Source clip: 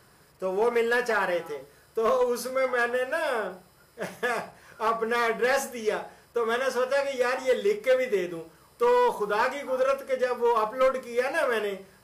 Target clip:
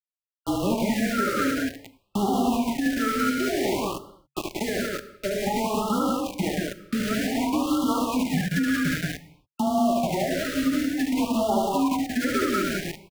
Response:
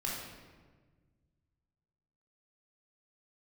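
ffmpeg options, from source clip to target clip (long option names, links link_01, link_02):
-filter_complex "[0:a]highpass=frequency=500:width_type=q:width=0.5412,highpass=frequency=500:width_type=q:width=1.307,lowpass=frequency=2800:width_type=q:width=0.5176,lowpass=frequency=2800:width_type=q:width=0.7071,lowpass=frequency=2800:width_type=q:width=1.932,afreqshift=-76,asetrate=40517,aresample=44100,aeval=exprs='val(0)*gte(abs(val(0)),0.0282)':channel_layout=same,asplit=2[link_01][link_02];[1:a]atrim=start_sample=2205,afade=type=out:start_time=0.34:duration=0.01,atrim=end_sample=15435,highshelf=frequency=7600:gain=8.5[link_03];[link_02][link_03]afir=irnorm=-1:irlink=0,volume=-18dB[link_04];[link_01][link_04]amix=inputs=2:normalize=0,alimiter=limit=-21.5dB:level=0:latency=1,aecho=1:1:72.89|180.8:0.708|0.794,afreqshift=-140,asplit=2[link_05][link_06];[link_06]acompressor=threshold=-31dB:ratio=6,volume=2.5dB[link_07];[link_05][link_07]amix=inputs=2:normalize=0,afftfilt=real='re*(1-between(b*sr/1024,850*pow(2000/850,0.5+0.5*sin(2*PI*0.54*pts/sr))/1.41,850*pow(2000/850,0.5+0.5*sin(2*PI*0.54*pts/sr))*1.41))':imag='im*(1-between(b*sr/1024,850*pow(2000/850,0.5+0.5*sin(2*PI*0.54*pts/sr))/1.41,850*pow(2000/850,0.5+0.5*sin(2*PI*0.54*pts/sr))*1.41))':win_size=1024:overlap=0.75"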